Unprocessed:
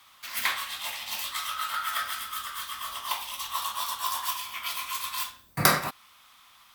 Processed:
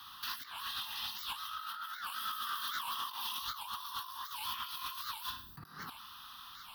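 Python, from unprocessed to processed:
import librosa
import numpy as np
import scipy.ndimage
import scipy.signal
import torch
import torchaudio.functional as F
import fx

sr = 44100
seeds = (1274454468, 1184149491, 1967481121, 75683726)

y = fx.cheby1_highpass(x, sr, hz=160.0, order=2, at=(1.67, 3.41))
y = fx.over_compress(y, sr, threshold_db=-41.0, ratio=-1.0)
y = fx.fixed_phaser(y, sr, hz=2200.0, stages=6)
y = 10.0 ** (-28.0 / 20.0) * np.tanh(y / 10.0 ** (-28.0 / 20.0))
y = fx.record_warp(y, sr, rpm=78.0, depth_cents=250.0)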